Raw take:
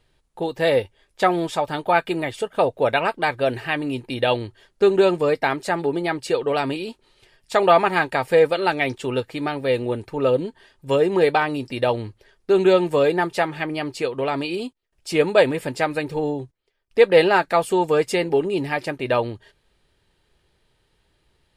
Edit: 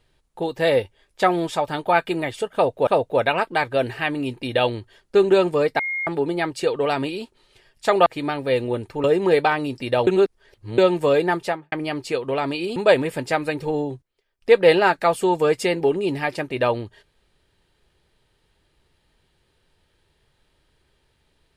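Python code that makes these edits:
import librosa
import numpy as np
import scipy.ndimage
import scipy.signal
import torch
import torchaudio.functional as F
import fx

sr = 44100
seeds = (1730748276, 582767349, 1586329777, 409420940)

y = fx.studio_fade_out(x, sr, start_s=13.3, length_s=0.32)
y = fx.edit(y, sr, fx.repeat(start_s=2.54, length_s=0.33, count=2),
    fx.bleep(start_s=5.46, length_s=0.28, hz=2140.0, db=-23.0),
    fx.cut(start_s=7.73, length_s=1.51),
    fx.cut(start_s=10.22, length_s=0.72),
    fx.reverse_span(start_s=11.97, length_s=0.71),
    fx.cut(start_s=14.66, length_s=0.59), tone=tone)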